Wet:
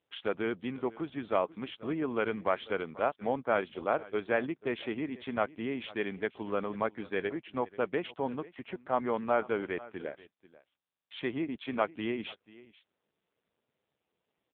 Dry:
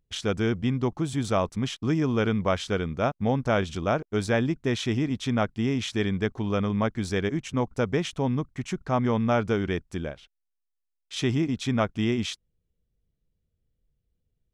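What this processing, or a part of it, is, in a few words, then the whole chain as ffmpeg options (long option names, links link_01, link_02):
satellite phone: -af "highpass=370,lowpass=3100,aecho=1:1:489:0.106,volume=-2dB" -ar 8000 -c:a libopencore_amrnb -b:a 5900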